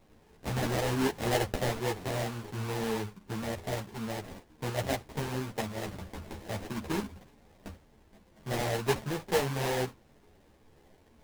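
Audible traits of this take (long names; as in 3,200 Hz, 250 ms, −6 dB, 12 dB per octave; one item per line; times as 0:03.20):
aliases and images of a low sample rate 1,300 Hz, jitter 20%
a shimmering, thickened sound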